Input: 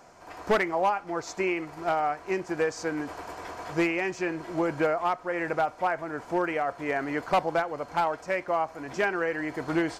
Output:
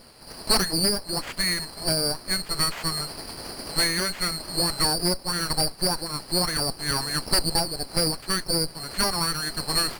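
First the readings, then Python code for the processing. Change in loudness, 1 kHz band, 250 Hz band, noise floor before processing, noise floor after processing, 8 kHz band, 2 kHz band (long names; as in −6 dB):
+4.5 dB, −4.0 dB, −0.5 dB, −48 dBFS, −44 dBFS, +20.5 dB, −0.5 dB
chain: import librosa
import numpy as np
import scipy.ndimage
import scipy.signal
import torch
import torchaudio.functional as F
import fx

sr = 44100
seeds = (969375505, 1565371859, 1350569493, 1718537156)

y = fx.band_swap(x, sr, width_hz=4000)
y = fx.running_max(y, sr, window=5)
y = y * 10.0 ** (5.5 / 20.0)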